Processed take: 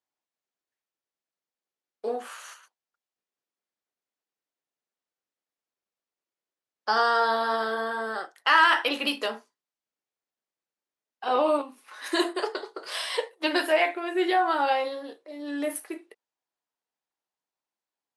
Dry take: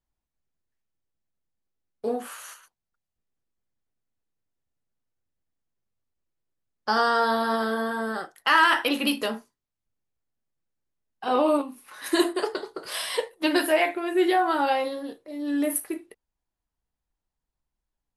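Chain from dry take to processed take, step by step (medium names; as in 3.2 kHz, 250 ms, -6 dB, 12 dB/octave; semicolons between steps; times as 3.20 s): band-pass 400–7500 Hz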